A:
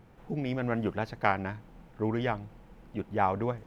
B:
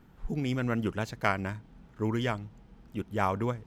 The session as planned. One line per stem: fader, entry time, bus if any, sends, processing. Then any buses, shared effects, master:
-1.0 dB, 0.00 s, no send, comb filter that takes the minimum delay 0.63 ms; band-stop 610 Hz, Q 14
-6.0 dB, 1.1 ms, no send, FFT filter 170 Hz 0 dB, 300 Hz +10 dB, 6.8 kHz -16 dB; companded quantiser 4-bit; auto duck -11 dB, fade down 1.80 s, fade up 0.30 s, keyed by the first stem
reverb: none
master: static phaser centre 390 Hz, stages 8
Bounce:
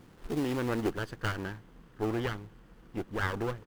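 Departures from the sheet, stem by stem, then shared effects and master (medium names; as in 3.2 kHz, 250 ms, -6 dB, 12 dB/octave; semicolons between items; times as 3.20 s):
stem B: polarity flipped; master: missing static phaser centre 390 Hz, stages 8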